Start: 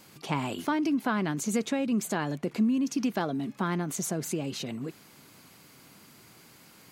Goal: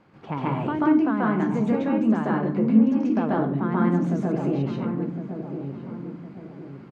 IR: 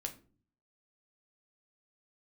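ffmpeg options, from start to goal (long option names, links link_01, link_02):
-filter_complex "[0:a]lowpass=1500,asplit=2[link_01][link_02];[link_02]adelay=1059,lowpass=frequency=920:poles=1,volume=-7.5dB,asplit=2[link_03][link_04];[link_04]adelay=1059,lowpass=frequency=920:poles=1,volume=0.42,asplit=2[link_05][link_06];[link_06]adelay=1059,lowpass=frequency=920:poles=1,volume=0.42,asplit=2[link_07][link_08];[link_08]adelay=1059,lowpass=frequency=920:poles=1,volume=0.42,asplit=2[link_09][link_10];[link_10]adelay=1059,lowpass=frequency=920:poles=1,volume=0.42[link_11];[link_01][link_03][link_05][link_07][link_09][link_11]amix=inputs=6:normalize=0,asplit=2[link_12][link_13];[1:a]atrim=start_sample=2205,asetrate=29547,aresample=44100,adelay=136[link_14];[link_13][link_14]afir=irnorm=-1:irlink=0,volume=3.5dB[link_15];[link_12][link_15]amix=inputs=2:normalize=0"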